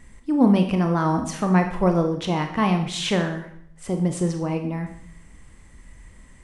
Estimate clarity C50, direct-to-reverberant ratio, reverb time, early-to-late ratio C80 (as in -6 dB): 8.5 dB, 5.0 dB, 0.65 s, 11.5 dB